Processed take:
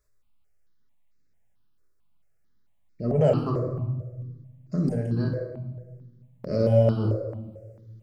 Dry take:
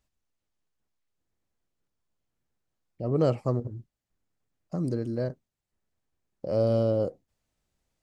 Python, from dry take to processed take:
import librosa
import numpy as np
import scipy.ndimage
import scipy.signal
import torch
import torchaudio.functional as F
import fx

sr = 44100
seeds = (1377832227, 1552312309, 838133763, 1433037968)

y = fx.room_shoebox(x, sr, seeds[0], volume_m3=750.0, walls='mixed', distance_m=1.4)
y = fx.phaser_held(y, sr, hz=4.5, low_hz=800.0, high_hz=3100.0)
y = F.gain(torch.from_numpy(y), 4.0).numpy()